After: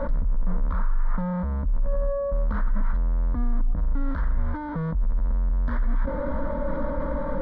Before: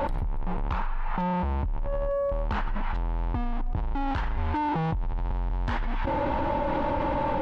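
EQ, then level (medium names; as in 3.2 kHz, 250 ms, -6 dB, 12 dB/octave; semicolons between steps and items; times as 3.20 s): distance through air 230 m; bass shelf 170 Hz +8 dB; static phaser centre 540 Hz, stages 8; 0.0 dB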